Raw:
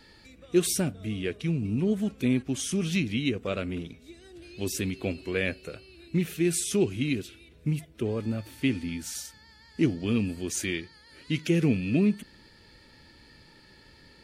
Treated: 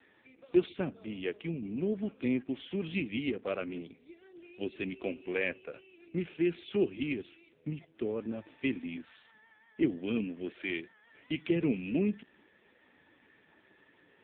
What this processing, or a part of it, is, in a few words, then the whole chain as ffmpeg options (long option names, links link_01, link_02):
telephone: -af "highpass=260,lowpass=3500,volume=-1.5dB" -ar 8000 -c:a libopencore_amrnb -b:a 5900